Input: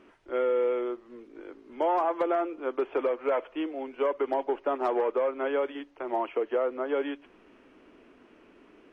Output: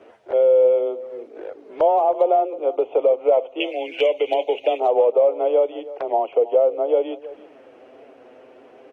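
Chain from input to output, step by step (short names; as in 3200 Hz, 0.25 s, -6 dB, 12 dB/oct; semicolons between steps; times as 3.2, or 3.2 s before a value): HPF 50 Hz 24 dB/oct; band shelf 590 Hz +11.5 dB 1.1 oct; notches 50/100/150/200/250 Hz; 3.6–4.8 resonant high shelf 1700 Hz +12.5 dB, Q 3; in parallel at +3 dB: compressor, threshold -35 dBFS, peak gain reduction 21 dB; on the sum: frequency shift +18 Hz; envelope flanger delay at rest 11.9 ms, full sweep at -21 dBFS; outdoor echo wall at 55 m, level -17 dB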